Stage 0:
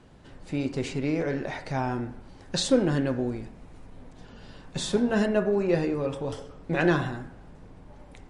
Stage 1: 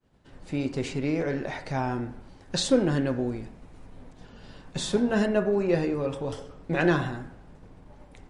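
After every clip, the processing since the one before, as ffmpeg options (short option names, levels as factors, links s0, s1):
-af "agate=range=0.0224:threshold=0.00631:ratio=3:detection=peak"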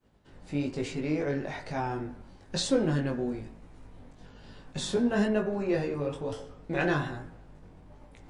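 -af "areverse,acompressor=mode=upward:threshold=0.00501:ratio=2.5,areverse,flanger=delay=18:depth=3.4:speed=1.1"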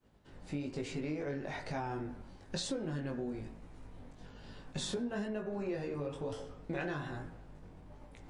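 -af "acompressor=threshold=0.0224:ratio=6,volume=0.841"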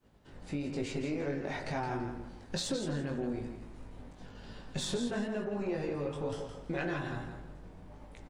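-af "aecho=1:1:167|334|501:0.398|0.0995|0.0249,aeval=exprs='0.0668*(cos(1*acos(clip(val(0)/0.0668,-1,1)))-cos(1*PI/2))+0.00422*(cos(4*acos(clip(val(0)/0.0668,-1,1)))-cos(4*PI/2))':c=same,volume=1.33"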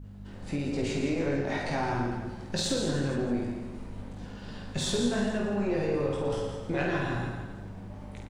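-filter_complex "[0:a]aeval=exprs='val(0)+0.00501*(sin(2*PI*50*n/s)+sin(2*PI*2*50*n/s)/2+sin(2*PI*3*50*n/s)/3+sin(2*PI*4*50*n/s)/4+sin(2*PI*5*50*n/s)/5)':c=same,asplit=2[s0][s1];[s1]aecho=0:1:50|115|199.5|309.4|452.2:0.631|0.398|0.251|0.158|0.1[s2];[s0][s2]amix=inputs=2:normalize=0,volume=1.58"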